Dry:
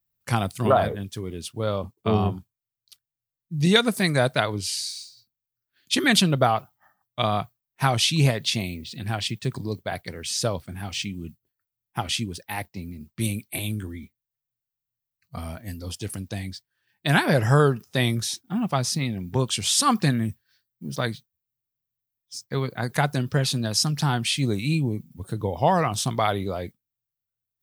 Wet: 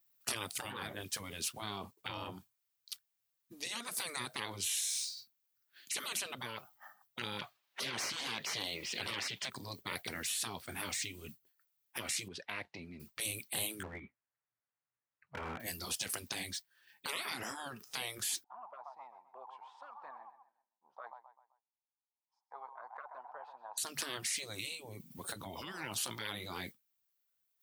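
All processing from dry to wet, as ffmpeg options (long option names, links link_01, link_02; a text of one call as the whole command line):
ffmpeg -i in.wav -filter_complex "[0:a]asettb=1/sr,asplit=3[link_01][link_02][link_03];[link_01]atrim=end=7.394[link_04];[link_02]atrim=start=7.39:end=9.5,asetpts=PTS-STARTPTS,afade=type=in:duration=0.004:curve=qsin,afade=type=out:start_time=2.106:duration=0.004:curve=qsin,asplit=2[link_05][link_06];[link_06]highpass=frequency=720:poles=1,volume=22dB,asoftclip=type=tanh:threshold=-5.5dB[link_07];[link_05][link_07]amix=inputs=2:normalize=0,lowpass=frequency=1100:poles=1,volume=-6dB,equalizer=frequency=3500:width_type=o:width=1.3:gain=7.5[link_08];[link_03]atrim=start=9.496[link_09];[link_04][link_08]acrossfade=duration=0.004:curve1=hsin:curve2=qsin[link_10];[link_10][link_09]acrossfade=duration=0.004:curve1=qsin:curve2=hsin,asettb=1/sr,asplit=3[link_11][link_12][link_13];[link_11]atrim=end=12.284[link_14];[link_12]atrim=start=12.28:end=13,asetpts=PTS-STARTPTS,afade=type=in:duration=0.004:curve=qsin,afade=type=out:start_time=0.716:duration=0.004:curve=qsin,lowpass=3200,acompressor=threshold=-43dB:ratio=2:attack=3.2:release=140:knee=1:detection=peak[link_15];[link_13]atrim=start=12.996[link_16];[link_14][link_15]acrossfade=duration=0.004:curve1=hsin:curve2=qsin[link_17];[link_17][link_16]acrossfade=duration=0.004:curve1=qsin:curve2=hsin,asettb=1/sr,asplit=3[link_18][link_19][link_20];[link_18]atrim=end=13.834[link_21];[link_19]atrim=start=13.83:end=15.6,asetpts=PTS-STARTPTS,afade=type=in:duration=0.004:curve=qsin,afade=type=out:start_time=1.766:duration=0.004:curve=qsin,lowpass=frequency=2000:width=0.5412,lowpass=frequency=2000:width=1.3066,asoftclip=type=hard:threshold=-31dB[link_22];[link_20]atrim=start=15.596[link_23];[link_21][link_22]acrossfade=duration=0.004:curve1=hsin:curve2=qsin[link_24];[link_24][link_23]acrossfade=duration=0.004:curve1=qsin:curve2=hsin,asettb=1/sr,asplit=3[link_25][link_26][link_27];[link_25]atrim=end=18.444[link_28];[link_26]atrim=start=18.44:end=23.78,asetpts=PTS-STARTPTS,afade=type=in:duration=0.004:curve=qsin,afade=type=out:start_time=5.336:duration=0.004:curve=qsin,asuperpass=centerf=880:order=4:qfactor=4.3,aecho=1:1:129|258|387|516:0.178|0.0694|0.027|0.0105,atrim=end_sample=235494[link_29];[link_27]atrim=start=23.776[link_30];[link_28][link_29]acrossfade=duration=0.004:curve1=hsin:curve2=qsin[link_31];[link_31][link_30]acrossfade=duration=0.004:curve1=qsin:curve2=hsin,acompressor=threshold=-30dB:ratio=10,highpass=frequency=770:poles=1,afftfilt=real='re*lt(hypot(re,im),0.0224)':imag='im*lt(hypot(re,im),0.0224)':win_size=1024:overlap=0.75,volume=6.5dB" out.wav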